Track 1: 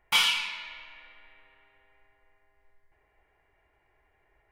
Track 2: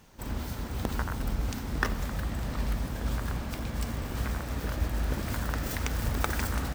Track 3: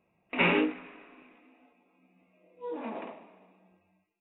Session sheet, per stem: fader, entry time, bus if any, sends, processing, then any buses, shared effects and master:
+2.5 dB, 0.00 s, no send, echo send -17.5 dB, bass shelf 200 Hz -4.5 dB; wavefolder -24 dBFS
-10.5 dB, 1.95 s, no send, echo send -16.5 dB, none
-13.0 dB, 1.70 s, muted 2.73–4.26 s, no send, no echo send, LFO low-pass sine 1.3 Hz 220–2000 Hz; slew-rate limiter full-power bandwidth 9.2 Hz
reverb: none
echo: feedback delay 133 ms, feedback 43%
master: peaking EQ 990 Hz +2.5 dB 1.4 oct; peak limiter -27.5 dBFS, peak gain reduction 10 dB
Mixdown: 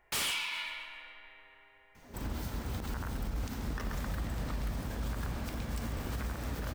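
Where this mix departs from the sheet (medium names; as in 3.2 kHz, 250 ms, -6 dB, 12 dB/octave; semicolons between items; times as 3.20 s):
stem 2 -10.5 dB -> -2.5 dB; stem 3 -13.0 dB -> -22.0 dB; master: missing peaking EQ 990 Hz +2.5 dB 1.4 oct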